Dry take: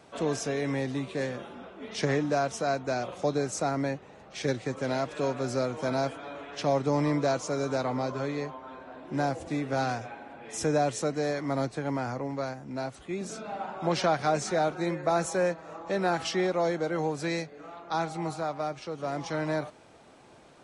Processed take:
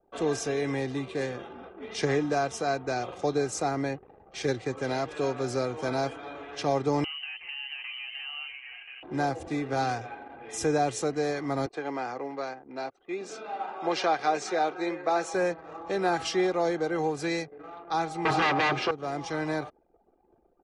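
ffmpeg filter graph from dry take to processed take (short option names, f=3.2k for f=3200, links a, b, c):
-filter_complex "[0:a]asettb=1/sr,asplit=3[a][b][c];[a]atrim=end=7.044[d];[b]atrim=start=7.04:end=9.03,asetpts=PTS-STARTPTS,afade=t=in:d=0.004:c=qsin,afade=t=out:st=1.986:d=0.004:c=qsin,lowpass=f=2.7k:t=q:w=0.5098,lowpass=f=2.7k:t=q:w=0.6013,lowpass=f=2.7k:t=q:w=0.9,lowpass=f=2.7k:t=q:w=2.563,afreqshift=-3200,acompressor=threshold=-35dB:ratio=8:attack=3.2:release=140:knee=1:detection=peak[e];[c]atrim=start=9.026[f];[d][e]acrossfade=d=0.004:c1=hsin:c2=qsin[g];[g][f]acrossfade=d=0.004:c1=qsin:c2=hsin,asettb=1/sr,asplit=3[h][i][j];[h]atrim=end=11.664[k];[i]atrim=start=11.66:end=15.34,asetpts=PTS-STARTPTS,afade=t=in:d=0.004:c=qsin,afade=t=out:st=3.676:d=0.004:c=qsin,highpass=310,lowpass=6.1k,equalizer=f=2.5k:t=o:w=0.27:g=2[l];[j]atrim=start=15.336[m];[k][l]acrossfade=d=0.004:c1=hsin:c2=qsin[n];[n][m]acrossfade=d=0.004:c1=qsin:c2=hsin,asettb=1/sr,asplit=3[o][p][q];[o]atrim=end=18.254[r];[p]atrim=start=18.25:end=18.91,asetpts=PTS-STARTPTS,afade=t=in:d=0.004:c=qsin,afade=t=out:st=0.656:d=0.004:c=qsin,aeval=exprs='0.0944*sin(PI/2*4.47*val(0)/0.0944)':c=same,highpass=140,lowpass=3.4k[s];[q]atrim=start=18.906[t];[r][s]acrossfade=d=0.004:c1=hsin:c2=qsin[u];[u][t]acrossfade=d=0.004:c1=qsin:c2=hsin,anlmdn=0.0158,aecho=1:1:2.5:0.41"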